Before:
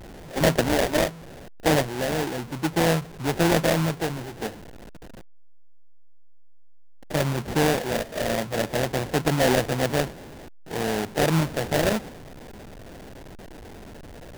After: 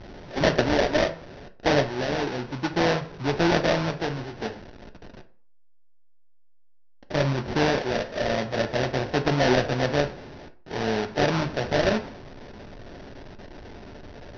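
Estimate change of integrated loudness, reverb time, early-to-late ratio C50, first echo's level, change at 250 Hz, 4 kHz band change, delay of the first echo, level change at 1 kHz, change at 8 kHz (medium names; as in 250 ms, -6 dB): -0.5 dB, 0.45 s, 14.5 dB, no echo, -1.0 dB, 0.0 dB, no echo, 0.0 dB, -8.5 dB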